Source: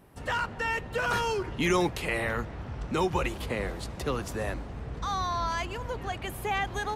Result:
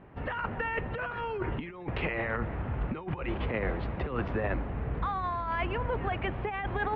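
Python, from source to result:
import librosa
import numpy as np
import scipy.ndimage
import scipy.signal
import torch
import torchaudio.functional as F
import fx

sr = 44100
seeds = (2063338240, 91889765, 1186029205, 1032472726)

y = scipy.signal.sosfilt(scipy.signal.cheby2(4, 60, 8000.0, 'lowpass', fs=sr, output='sos'), x)
y = fx.over_compress(y, sr, threshold_db=-32.0, ratio=-0.5)
y = F.gain(torch.from_numpy(y), 1.5).numpy()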